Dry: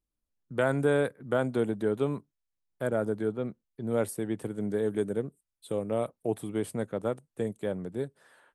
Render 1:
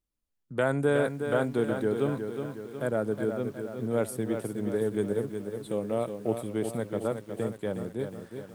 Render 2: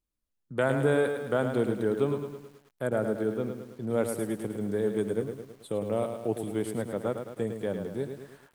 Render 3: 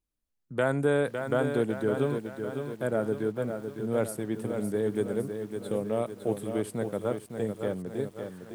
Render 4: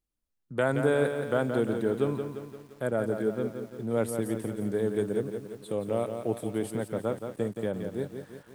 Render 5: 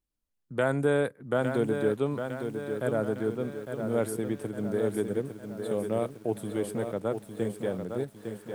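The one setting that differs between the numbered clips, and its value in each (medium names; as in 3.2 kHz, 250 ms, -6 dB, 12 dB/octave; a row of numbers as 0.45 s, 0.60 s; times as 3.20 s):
bit-crushed delay, time: 365 ms, 107 ms, 557 ms, 173 ms, 856 ms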